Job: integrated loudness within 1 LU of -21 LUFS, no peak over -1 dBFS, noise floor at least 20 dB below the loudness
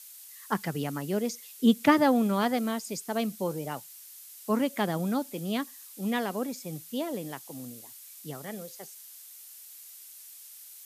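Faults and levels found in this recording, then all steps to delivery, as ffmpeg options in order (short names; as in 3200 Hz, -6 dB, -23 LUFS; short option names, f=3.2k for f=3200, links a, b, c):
noise floor -49 dBFS; noise floor target -50 dBFS; loudness -29.5 LUFS; peak -10.0 dBFS; loudness target -21.0 LUFS
-> -af "afftdn=nr=6:nf=-49"
-af "volume=8.5dB"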